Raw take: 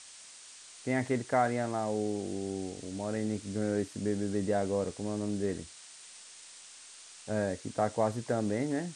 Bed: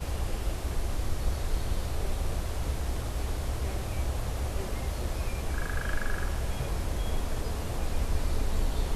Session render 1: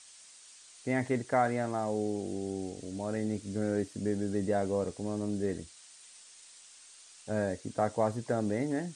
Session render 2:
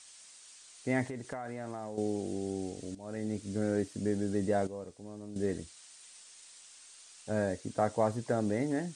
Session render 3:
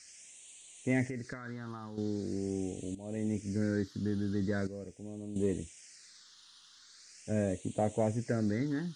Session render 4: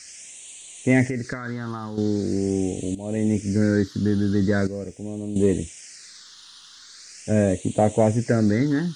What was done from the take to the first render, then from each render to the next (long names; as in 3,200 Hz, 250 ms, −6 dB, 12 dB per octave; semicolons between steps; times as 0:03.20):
broadband denoise 6 dB, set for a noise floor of −52 dBFS
0:01.09–0:01.98: downward compressor 12 to 1, threshold −35 dBFS; 0:02.95–0:03.60: fade in equal-power, from −16.5 dB; 0:04.67–0:05.36: clip gain −11 dB
all-pass phaser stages 6, 0.42 Hz, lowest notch 610–1,400 Hz; in parallel at −10 dB: soft clipping −28 dBFS, distortion −14 dB
level +12 dB